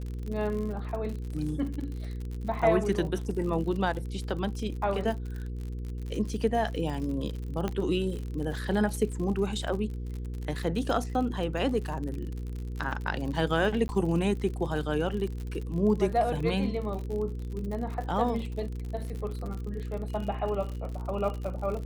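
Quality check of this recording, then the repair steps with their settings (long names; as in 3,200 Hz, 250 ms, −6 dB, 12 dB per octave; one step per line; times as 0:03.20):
surface crackle 60 per second −35 dBFS
mains hum 60 Hz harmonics 8 −35 dBFS
0:07.68: click −17 dBFS
0:13.88–0:13.89: drop-out 10 ms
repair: click removal
hum removal 60 Hz, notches 8
repair the gap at 0:13.88, 10 ms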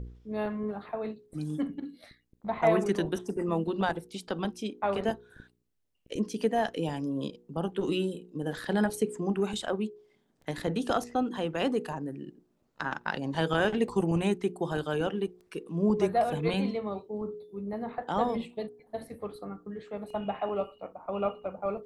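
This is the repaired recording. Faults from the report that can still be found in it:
0:07.68: click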